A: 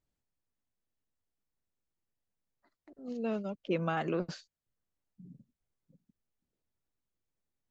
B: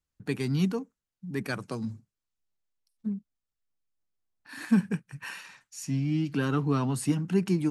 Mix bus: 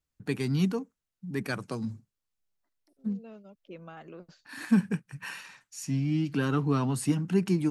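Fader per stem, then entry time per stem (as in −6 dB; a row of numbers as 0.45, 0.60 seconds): −13.5, 0.0 decibels; 0.00, 0.00 seconds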